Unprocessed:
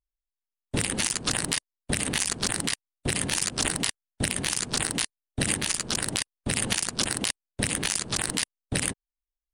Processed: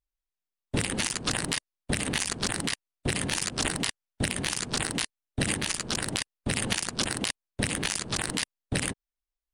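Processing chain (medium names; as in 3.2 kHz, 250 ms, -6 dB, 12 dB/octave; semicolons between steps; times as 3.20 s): treble shelf 6.4 kHz -6.5 dB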